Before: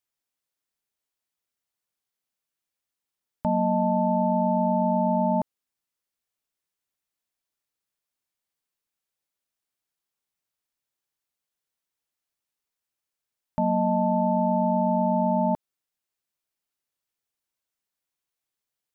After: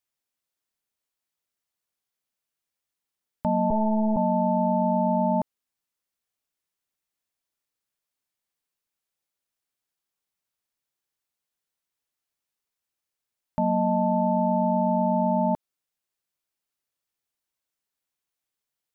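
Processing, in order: 3.7–4.17 LPC vocoder at 8 kHz pitch kept

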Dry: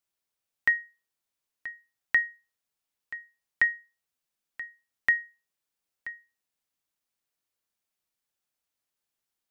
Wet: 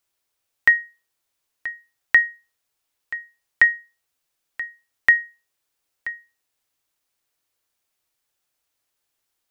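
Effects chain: bell 200 Hz -13 dB 0.31 oct; gain +8.5 dB

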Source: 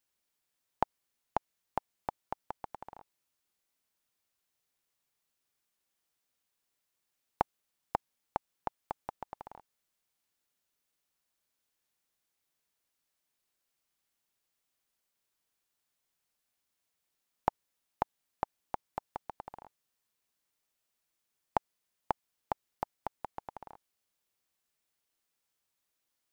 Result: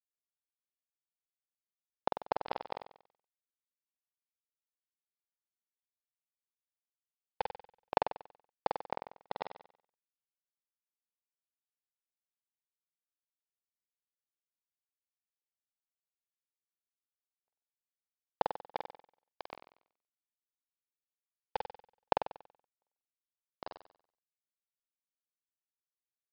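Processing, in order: HPF 210 Hz 6 dB/oct; bell 500 Hz +10.5 dB 0.43 oct; in parallel at +0.5 dB: compressor 4:1, threshold -40 dBFS, peak gain reduction 16.5 dB; on the sum: hard clip -12.5 dBFS, distortion -14 dB; grains 38 ms, grains 20/s, spray 25 ms, pitch spread up and down by 0 st; requantised 6-bit, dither none; step gate "xxxxxx..xx" 84 bpm -60 dB; on a send: flutter echo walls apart 8.1 m, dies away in 0.56 s; on the sum: downsampling 11025 Hz; gain +1.5 dB

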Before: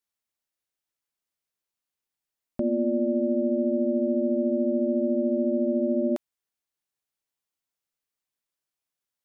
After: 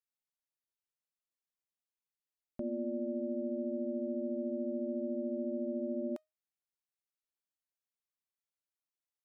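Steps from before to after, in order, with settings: resonator 620 Hz, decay 0.21 s, harmonics all, mix 40%; gain -7.5 dB

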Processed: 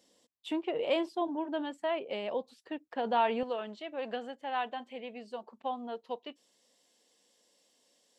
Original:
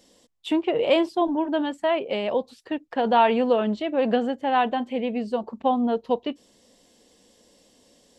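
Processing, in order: HPF 220 Hz 6 dB/oct, from 3.43 s 830 Hz; gain -9 dB

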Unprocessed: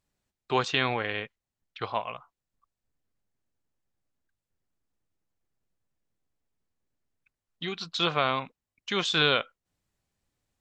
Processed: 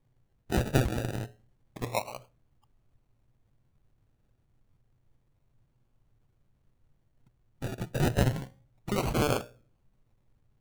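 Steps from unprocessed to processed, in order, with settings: harmonic-percussive split harmonic -10 dB; added noise brown -68 dBFS; notches 60/120/180/240/300/360/420/480/540/600 Hz; decimation with a swept rate 32×, swing 60% 0.29 Hz; bell 120 Hz +13 dB 0.48 oct; notch 5000 Hz, Q 17; on a send: reverb RT60 0.45 s, pre-delay 4 ms, DRR 21 dB

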